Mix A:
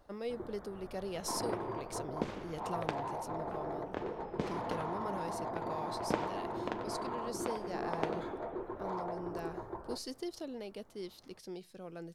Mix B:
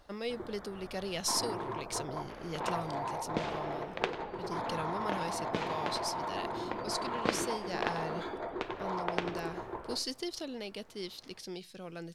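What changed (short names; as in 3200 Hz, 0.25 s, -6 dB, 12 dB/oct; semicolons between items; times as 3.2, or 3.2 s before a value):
speech: add tone controls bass +4 dB, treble +3 dB; second sound: entry +1.15 s; master: add bell 3100 Hz +9.5 dB 2.5 oct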